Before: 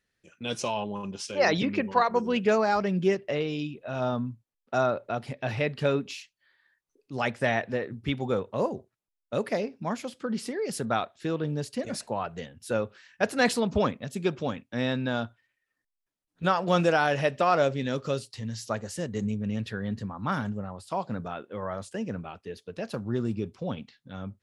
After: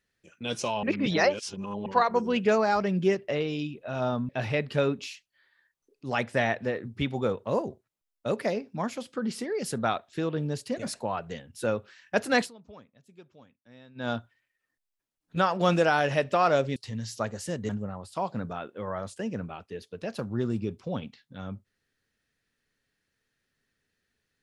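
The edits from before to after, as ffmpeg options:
ffmpeg -i in.wav -filter_complex "[0:a]asplit=8[link_01][link_02][link_03][link_04][link_05][link_06][link_07][link_08];[link_01]atrim=end=0.832[link_09];[link_02]atrim=start=0.828:end=1.862,asetpts=PTS-STARTPTS,areverse[link_10];[link_03]atrim=start=1.858:end=4.292[link_11];[link_04]atrim=start=5.358:end=13.58,asetpts=PTS-STARTPTS,afade=type=out:start_time=8.072:duration=0.15:silence=0.0630957[link_12];[link_05]atrim=start=13.58:end=15.02,asetpts=PTS-STARTPTS,volume=-24dB[link_13];[link_06]atrim=start=15.02:end=17.832,asetpts=PTS-STARTPTS,afade=type=in:duration=0.15:silence=0.0630957[link_14];[link_07]atrim=start=18.258:end=19.192[link_15];[link_08]atrim=start=20.438[link_16];[link_09][link_10]acrossfade=duration=0.004:curve1=hsin:curve2=hsin[link_17];[link_17][link_11]acrossfade=duration=0.004:curve1=hsin:curve2=hsin[link_18];[link_12][link_13][link_14]concat=n=3:v=0:a=1[link_19];[link_18][link_19]acrossfade=duration=0.004:curve1=hsin:curve2=hsin[link_20];[link_20][link_15]acrossfade=duration=0.004:curve1=hsin:curve2=hsin[link_21];[link_21][link_16]acrossfade=duration=0.004:curve1=hsin:curve2=hsin" out.wav

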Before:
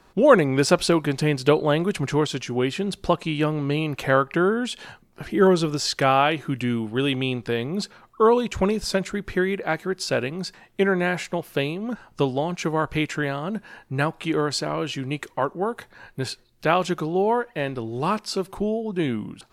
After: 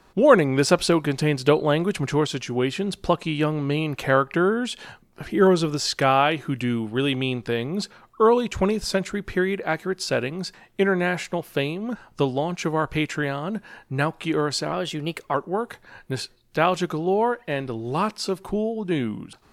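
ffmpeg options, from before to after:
ffmpeg -i in.wav -filter_complex "[0:a]asplit=3[link_01][link_02][link_03];[link_01]atrim=end=14.724[link_04];[link_02]atrim=start=14.72:end=15.42,asetpts=PTS-STARTPTS,asetrate=49833,aresample=44100[link_05];[link_03]atrim=start=15.416[link_06];[link_04][link_05]acrossfade=duration=0.004:curve1=hsin:curve2=hsin[link_07];[link_07][link_06]acrossfade=duration=0.004:curve1=hsin:curve2=hsin" out.wav

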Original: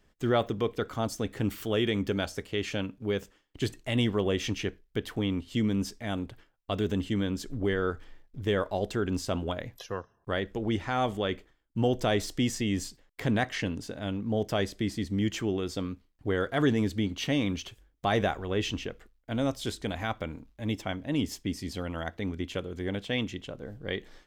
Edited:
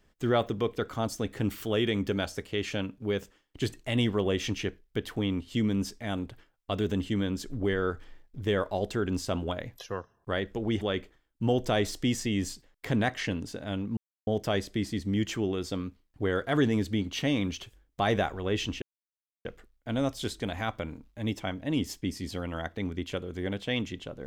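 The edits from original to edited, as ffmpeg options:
ffmpeg -i in.wav -filter_complex "[0:a]asplit=4[link_01][link_02][link_03][link_04];[link_01]atrim=end=10.812[link_05];[link_02]atrim=start=11.158:end=14.32,asetpts=PTS-STARTPTS,afade=type=out:start_time=3.158:duration=0.004:curve=hsin,apad=pad_dur=0.3[link_06];[link_03]atrim=start=14.32:end=18.87,asetpts=PTS-STARTPTS,afade=type=in:duration=0.004:curve=hsin,afade=type=out:start_time=4.546:duration=0.004:curve=hsin,apad=pad_dur=0.63[link_07];[link_04]atrim=start=18.87,asetpts=PTS-STARTPTS,afade=type=in:duration=0.004:curve=hsin[link_08];[link_06][link_07][link_08]concat=n=3:v=0:a=1[link_09];[link_05][link_09]acrossfade=duration=0.004:curve1=hsin:curve2=hsin" out.wav

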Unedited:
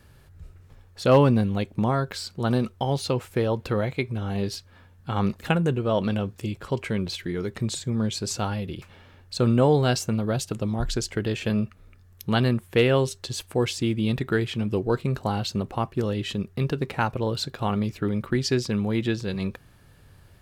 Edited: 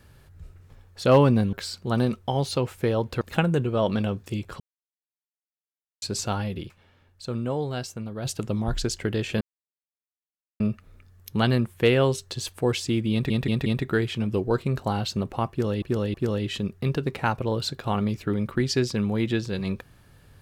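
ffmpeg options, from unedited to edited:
ffmpeg -i in.wav -filter_complex "[0:a]asplit=13[link_01][link_02][link_03][link_04][link_05][link_06][link_07][link_08][link_09][link_10][link_11][link_12][link_13];[link_01]atrim=end=1.532[link_14];[link_02]atrim=start=2.058:end=3.742[link_15];[link_03]atrim=start=5.328:end=6.72,asetpts=PTS-STARTPTS,afade=type=out:start_time=1.388:duration=0.004:curve=hsin[link_16];[link_04]atrim=start=6.72:end=8.14,asetpts=PTS-STARTPTS,volume=0[link_17];[link_05]atrim=start=8.14:end=8.98,asetpts=PTS-STARTPTS,afade=type=in:duration=0.004:curve=hsin,afade=type=out:start_time=0.64:duration=0.2:curve=exp:silence=0.354813[link_18];[link_06]atrim=start=8.98:end=10.18,asetpts=PTS-STARTPTS,volume=-9dB[link_19];[link_07]atrim=start=10.18:end=11.53,asetpts=PTS-STARTPTS,afade=type=in:duration=0.2:curve=exp:silence=0.354813,afade=type=out:start_time=1.346:duration=0.004:curve=hsin,apad=pad_dur=1.19[link_20];[link_08]atrim=start=11.53:end=14.232,asetpts=PTS-STARTPTS,afade=type=in:duration=0.004:curve=hsin[link_21];[link_09]atrim=start=14.048:end=14.232[link_22];[link_10]atrim=start=14.048:end=14.232[link_23];[link_11]atrim=start=14.048:end=16.212[link_24];[link_12]atrim=start=15.888:end=16.212[link_25];[link_13]atrim=start=15.888[link_26];[link_14][link_15]acrossfade=duration=0.004:curve1=hsin:curve2=hsin[link_27];[link_16][link_17][link_18][link_19][link_20][link_21]concat=n=6:v=0:a=1[link_28];[link_27][link_28]acrossfade=duration=0.004:curve1=hsin:curve2=hsin[link_29];[link_29][link_22]acrossfade=duration=0.004:curve1=hsin:curve2=hsin[link_30];[link_30][link_23]acrossfade=duration=0.004:curve1=hsin:curve2=hsin[link_31];[link_31][link_24]acrossfade=duration=0.004:curve1=hsin:curve2=hsin[link_32];[link_32][link_25]acrossfade=duration=0.004:curve1=hsin:curve2=hsin[link_33];[link_33][link_26]acrossfade=duration=0.004:curve1=hsin:curve2=hsin" out.wav

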